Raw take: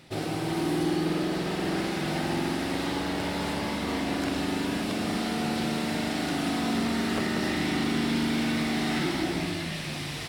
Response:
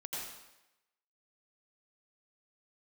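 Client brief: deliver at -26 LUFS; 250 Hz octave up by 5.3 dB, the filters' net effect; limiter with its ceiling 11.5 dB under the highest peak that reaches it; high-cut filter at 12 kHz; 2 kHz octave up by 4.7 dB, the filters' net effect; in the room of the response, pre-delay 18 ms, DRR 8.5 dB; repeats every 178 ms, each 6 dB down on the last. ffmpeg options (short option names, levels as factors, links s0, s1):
-filter_complex "[0:a]lowpass=12000,equalizer=f=250:t=o:g=6.5,equalizer=f=2000:t=o:g=5.5,alimiter=limit=0.0668:level=0:latency=1,aecho=1:1:178|356|534|712|890|1068:0.501|0.251|0.125|0.0626|0.0313|0.0157,asplit=2[s0][s1];[1:a]atrim=start_sample=2205,adelay=18[s2];[s1][s2]afir=irnorm=-1:irlink=0,volume=0.335[s3];[s0][s3]amix=inputs=2:normalize=0,volume=1.41"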